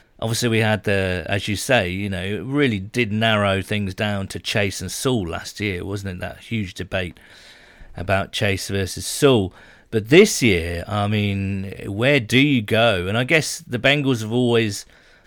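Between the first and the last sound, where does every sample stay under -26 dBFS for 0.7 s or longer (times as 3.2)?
7.17–7.98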